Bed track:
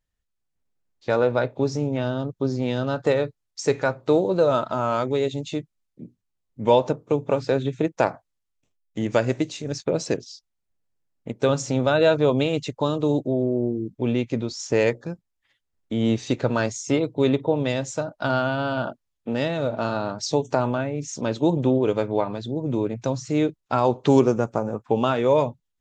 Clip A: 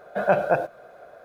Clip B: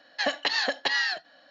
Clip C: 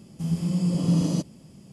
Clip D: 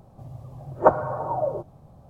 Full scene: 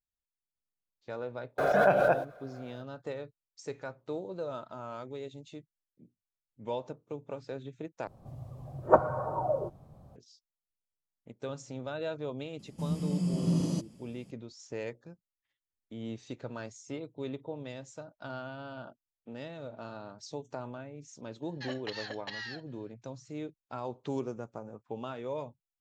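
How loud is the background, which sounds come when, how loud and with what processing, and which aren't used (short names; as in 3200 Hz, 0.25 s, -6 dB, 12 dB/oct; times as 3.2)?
bed track -18 dB
1.58 add A -5.5 dB + backwards sustainer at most 29 dB/s
8.07 replace with D -4 dB + bell 840 Hz -4 dB 0.21 oct
12.59 add C -6.5 dB
21.42 add B -15 dB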